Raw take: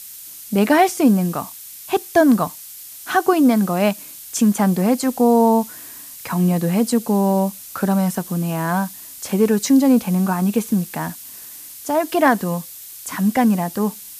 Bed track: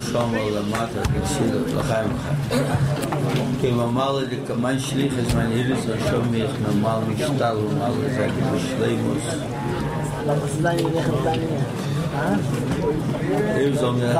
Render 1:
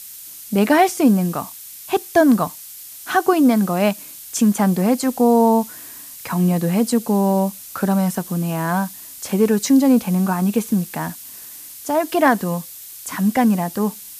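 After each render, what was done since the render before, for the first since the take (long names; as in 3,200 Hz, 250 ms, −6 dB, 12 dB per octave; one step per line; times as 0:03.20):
no processing that can be heard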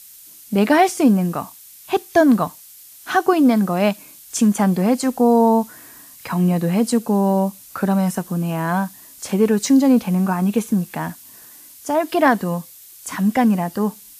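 noise reduction from a noise print 6 dB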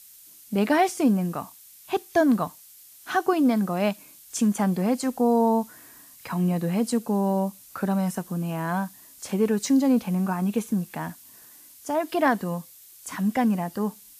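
level −6.5 dB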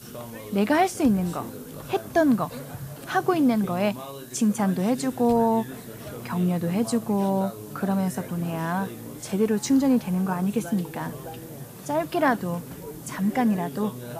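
mix in bed track −16.5 dB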